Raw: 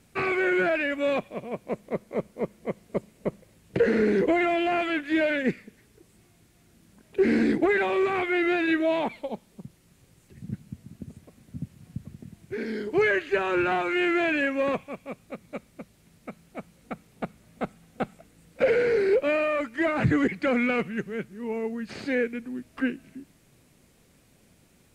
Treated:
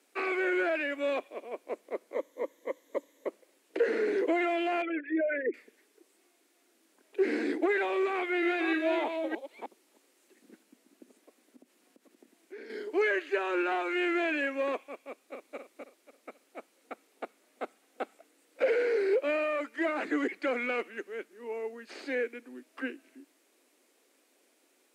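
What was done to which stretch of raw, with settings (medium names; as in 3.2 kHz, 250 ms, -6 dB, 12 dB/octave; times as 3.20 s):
2.14–3.27 s: rippled EQ curve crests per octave 1.1, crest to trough 11 dB
4.82–5.54 s: resonances exaggerated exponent 3
8.11–10.63 s: chunks repeated in reverse 310 ms, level -5 dB
11.56–12.70 s: compression 2.5:1, threshold -39 dBFS
15.07–15.56 s: echo throw 270 ms, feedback 35%, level -5 dB
whole clip: steep high-pass 280 Hz 48 dB/octave; trim -5 dB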